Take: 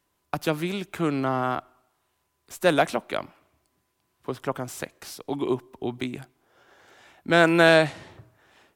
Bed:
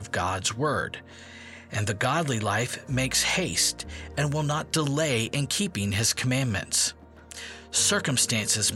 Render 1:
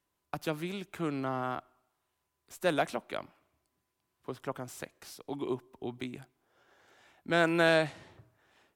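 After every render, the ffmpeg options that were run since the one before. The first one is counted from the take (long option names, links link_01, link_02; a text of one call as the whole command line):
ffmpeg -i in.wav -af "volume=-8.5dB" out.wav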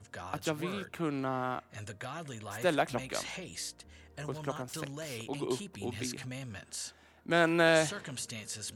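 ffmpeg -i in.wav -i bed.wav -filter_complex "[1:a]volume=-16.5dB[link_01];[0:a][link_01]amix=inputs=2:normalize=0" out.wav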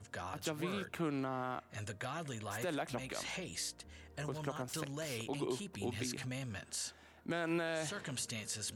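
ffmpeg -i in.wav -af "acompressor=threshold=-37dB:ratio=1.5,alimiter=level_in=3.5dB:limit=-24dB:level=0:latency=1:release=69,volume=-3.5dB" out.wav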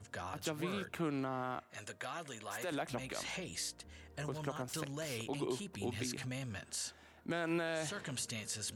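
ffmpeg -i in.wav -filter_complex "[0:a]asettb=1/sr,asplit=3[link_01][link_02][link_03];[link_01]atrim=end=1.644[link_04];[link_02]atrim=start=1.64:end=2.72,asetpts=PTS-STARTPTS,afade=type=in:duration=0.004:curve=qsin,afade=type=out:start_time=1.076:duration=0.004:curve=qsin,highpass=frequency=410:poles=1[link_05];[link_03]atrim=start=2.716[link_06];[link_04][link_05]acrossfade=duration=0.004:curve1=hsin:curve2=qsin[link_07];[link_07][link_06]acrossfade=duration=0.004:curve1=qsin:curve2=hsin" out.wav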